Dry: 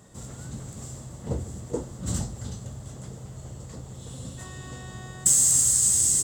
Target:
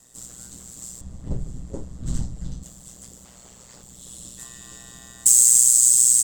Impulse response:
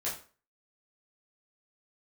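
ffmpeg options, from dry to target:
-filter_complex "[0:a]crystalizer=i=6:c=0,asplit=2[s0][s1];[s1]asoftclip=type=tanh:threshold=0.447,volume=0.447[s2];[s0][s2]amix=inputs=2:normalize=0,asettb=1/sr,asplit=3[s3][s4][s5];[s3]atrim=end=3.244[s6];[s4]atrim=start=3.24:end=3.83,asetpts=PTS-STARTPTS,afade=t=in:d=0.004:c=qsin,afade=t=out:st=0.586:d=0.004:c=qsin,asplit=2[s7][s8];[s8]highpass=f=720:p=1,volume=6.31,asoftclip=type=tanh:threshold=0.1[s9];[s7][s9]amix=inputs=2:normalize=0,lowpass=f=2600:p=1,volume=0.501[s10];[s5]atrim=start=3.826[s11];[s6][s10]acrossfade=d=0.004:c1=hsin:c2=qsin[s12];[s12][s11]acrossfade=d=0.004:c1=qsin:c2=hsin,aeval=exprs='val(0)*sin(2*PI*61*n/s)':c=same,asettb=1/sr,asplit=3[s13][s14][s15];[s13]atrim=end=1.014[s16];[s14]atrim=start=1.01:end=2.63,asetpts=PTS-STARTPTS,afade=t=in:d=0.004:c=qsin,afade=t=out:st=1.616:d=0.004:c=qsin,aemphasis=mode=reproduction:type=riaa[s17];[s15]atrim=start=2.626[s18];[s16][s17]acrossfade=d=0.004:c1=hsin:c2=qsin[s19];[s19][s18]acrossfade=d=0.004:c1=qsin:c2=hsin,volume=0.316"

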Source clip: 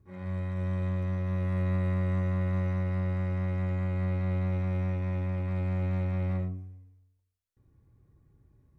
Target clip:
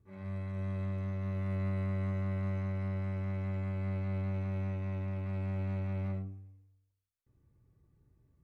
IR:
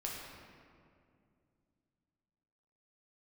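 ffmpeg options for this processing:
-af "asetrate=45938,aresample=44100,volume=0.531"

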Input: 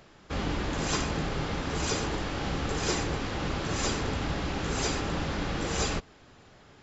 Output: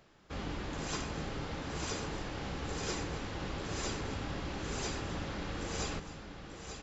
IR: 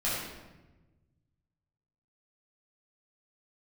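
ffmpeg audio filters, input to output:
-af "aecho=1:1:270|890:0.15|0.398,volume=0.376"

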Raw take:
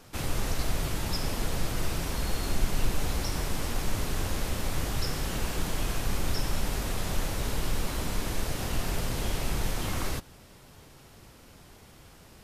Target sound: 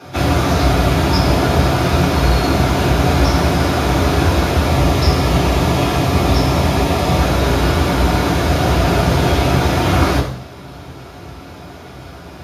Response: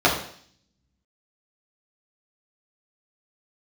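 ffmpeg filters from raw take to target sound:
-filter_complex "[0:a]asettb=1/sr,asplit=3[s0][s1][s2];[s0]atrim=end=4.674[s3];[s1]atrim=start=4.67:end=7.19,asetpts=PTS-STARTPTS,afade=t=in:d=0.004:c=qsin,afade=t=out:st=2.516:d=0.004:c=qsin,bandreject=f=1500:w=6[s4];[s2]atrim=start=7.186[s5];[s3][s4]acrossfade=d=0.004:c1=hsin:c2=qsin[s6];[s6][s5]acrossfade=d=0.004:c1=qsin:c2=hsin[s7];[1:a]atrim=start_sample=2205[s8];[s7][s8]afir=irnorm=-1:irlink=0,volume=0.794"

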